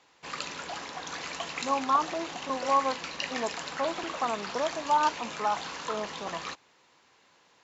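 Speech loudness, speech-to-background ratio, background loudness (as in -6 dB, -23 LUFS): -31.0 LUFS, 5.5 dB, -36.5 LUFS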